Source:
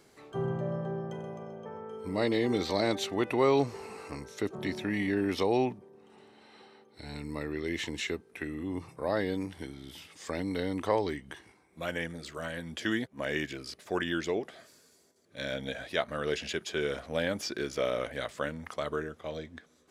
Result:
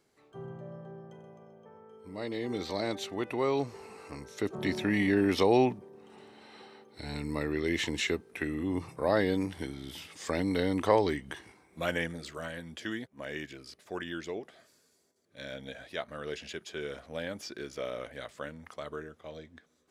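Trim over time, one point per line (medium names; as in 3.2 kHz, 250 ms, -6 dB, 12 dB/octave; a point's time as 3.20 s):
2.02 s -11 dB
2.64 s -4.5 dB
3.98 s -4.5 dB
4.75 s +3.5 dB
11.89 s +3.5 dB
12.96 s -6.5 dB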